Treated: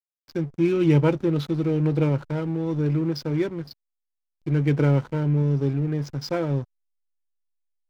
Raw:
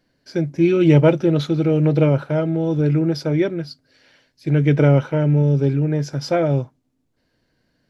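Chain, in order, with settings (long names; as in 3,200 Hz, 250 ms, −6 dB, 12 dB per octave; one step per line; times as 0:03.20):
thirty-one-band graphic EQ 630 Hz −9 dB, 1,000 Hz +5 dB, 5,000 Hz +4 dB
slack as between gear wheels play −28 dBFS
level −5 dB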